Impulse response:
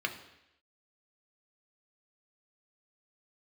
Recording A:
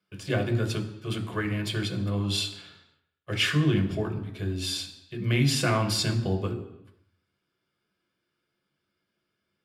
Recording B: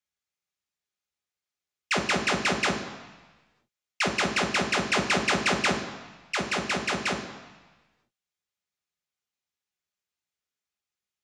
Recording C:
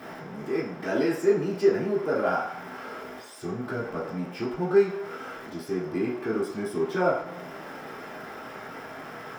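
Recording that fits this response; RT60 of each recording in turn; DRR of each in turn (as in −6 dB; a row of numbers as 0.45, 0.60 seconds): A; 0.85, 1.2, 0.60 seconds; 3.5, 2.5, −8.5 decibels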